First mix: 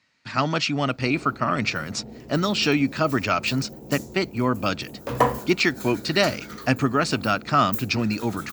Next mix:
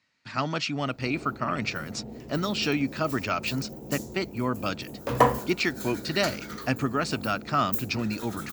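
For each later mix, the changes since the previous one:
speech -5.5 dB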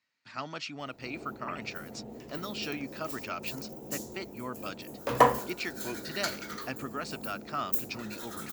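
speech -8.5 dB; master: add bass shelf 210 Hz -10 dB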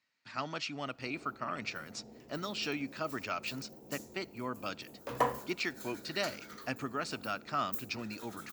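background -10.5 dB; reverb: on, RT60 0.65 s

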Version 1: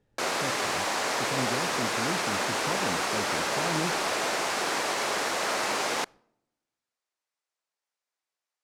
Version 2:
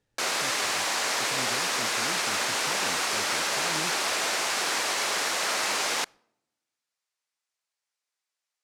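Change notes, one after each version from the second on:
speech: send off; master: add tilt shelf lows -5 dB, about 1.3 kHz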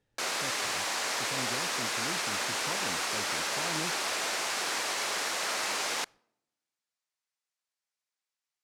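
background -4.5 dB

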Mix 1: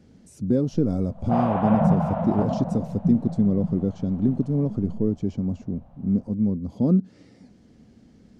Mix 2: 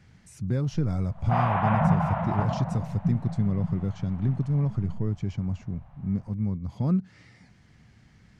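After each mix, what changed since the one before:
master: add graphic EQ 125/250/500/1000/2000 Hz +6/-12/-9/+4/+9 dB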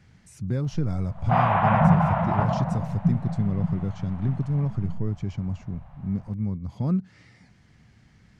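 background +4.5 dB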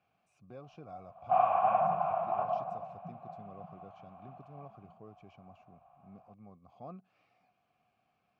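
master: add vowel filter a

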